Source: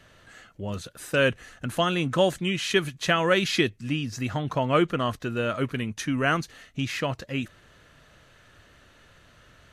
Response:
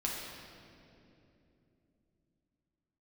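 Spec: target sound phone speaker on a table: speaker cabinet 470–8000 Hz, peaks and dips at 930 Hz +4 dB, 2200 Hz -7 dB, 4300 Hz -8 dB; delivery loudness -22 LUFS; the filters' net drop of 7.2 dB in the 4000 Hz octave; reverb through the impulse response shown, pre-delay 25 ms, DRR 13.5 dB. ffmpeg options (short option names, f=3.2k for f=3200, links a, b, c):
-filter_complex "[0:a]equalizer=f=4k:t=o:g=-7.5,asplit=2[a][b];[1:a]atrim=start_sample=2205,adelay=25[c];[b][c]afir=irnorm=-1:irlink=0,volume=-17.5dB[d];[a][d]amix=inputs=2:normalize=0,highpass=f=470:w=0.5412,highpass=f=470:w=1.3066,equalizer=f=930:t=q:w=4:g=4,equalizer=f=2.2k:t=q:w=4:g=-7,equalizer=f=4.3k:t=q:w=4:g=-8,lowpass=f=8k:w=0.5412,lowpass=f=8k:w=1.3066,volume=7.5dB"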